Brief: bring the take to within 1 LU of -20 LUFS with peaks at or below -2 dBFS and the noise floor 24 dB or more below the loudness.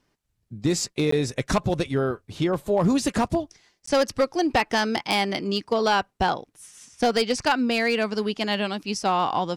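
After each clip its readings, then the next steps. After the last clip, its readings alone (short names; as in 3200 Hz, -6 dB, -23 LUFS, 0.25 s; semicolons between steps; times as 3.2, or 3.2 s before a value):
clipped 0.8%; flat tops at -14.0 dBFS; dropouts 2; longest dropout 14 ms; loudness -24.0 LUFS; peak -14.0 dBFS; loudness target -20.0 LUFS
-> clip repair -14 dBFS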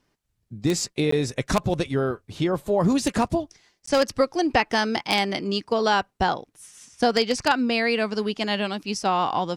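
clipped 0.0%; dropouts 2; longest dropout 14 ms
-> interpolate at 1.11/3.86, 14 ms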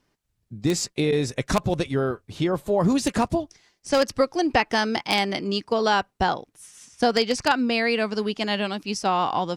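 dropouts 0; loudness -24.0 LUFS; peak -5.0 dBFS; loudness target -20.0 LUFS
-> gain +4 dB; limiter -2 dBFS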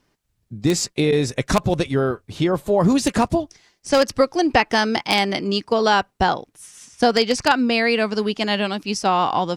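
loudness -20.0 LUFS; peak -2.0 dBFS; noise floor -70 dBFS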